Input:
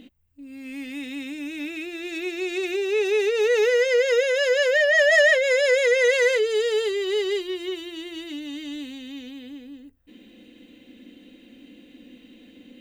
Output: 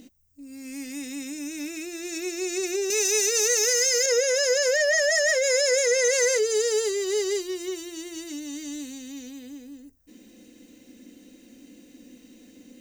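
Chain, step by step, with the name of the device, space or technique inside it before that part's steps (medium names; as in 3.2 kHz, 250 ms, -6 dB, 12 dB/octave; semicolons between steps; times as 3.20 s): 2.90–4.06 s: tilt EQ +3.5 dB/octave; over-bright horn tweeter (resonant high shelf 4.4 kHz +10 dB, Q 3; peak limiter -12.5 dBFS, peak gain reduction 6.5 dB); trim -1.5 dB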